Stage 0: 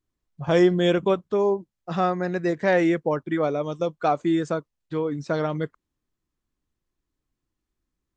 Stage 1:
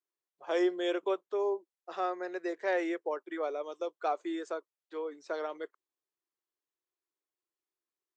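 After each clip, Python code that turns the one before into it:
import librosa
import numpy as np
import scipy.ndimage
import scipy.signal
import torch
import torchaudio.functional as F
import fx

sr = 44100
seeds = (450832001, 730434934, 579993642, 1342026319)

y = scipy.signal.sosfilt(scipy.signal.cheby1(4, 1.0, 360.0, 'highpass', fs=sr, output='sos'), x)
y = y * librosa.db_to_amplitude(-9.0)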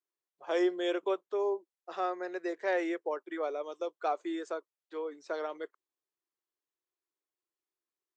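y = x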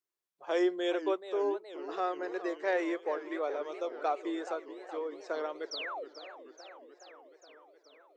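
y = fx.spec_paint(x, sr, seeds[0], shape='fall', start_s=5.71, length_s=0.34, low_hz=400.0, high_hz=6100.0, level_db=-39.0)
y = fx.echo_warbled(y, sr, ms=426, feedback_pct=70, rate_hz=2.8, cents=216, wet_db=-13.0)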